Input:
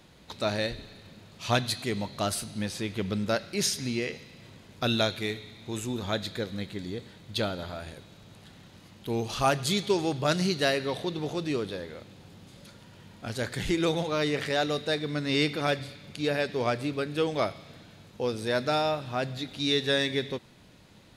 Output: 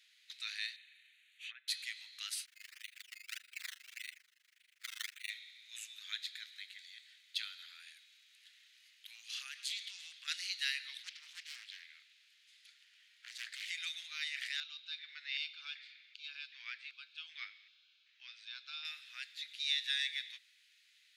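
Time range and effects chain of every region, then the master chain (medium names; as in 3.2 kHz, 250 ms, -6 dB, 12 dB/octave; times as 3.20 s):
0.76–1.68 s: low-pass that closes with the level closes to 830 Hz, closed at -23 dBFS + static phaser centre 2.2 kHz, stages 4
2.45–5.30 s: decimation with a swept rate 13× 1.7 Hz + AM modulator 25 Hz, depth 100%
9.15–10.28 s: compression, threshold -26 dBFS + loudspeaker Doppler distortion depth 0.17 ms
10.98–13.68 s: treble shelf 6.6 kHz -4 dB + loudspeaker Doppler distortion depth 0.77 ms
14.60–18.85 s: Bessel low-pass 3.4 kHz, order 4 + LFO notch square 1.3 Hz 310–1900 Hz
whole clip: steep high-pass 1.9 kHz 36 dB/octave; treble shelf 4.7 kHz -7.5 dB; trim -2.5 dB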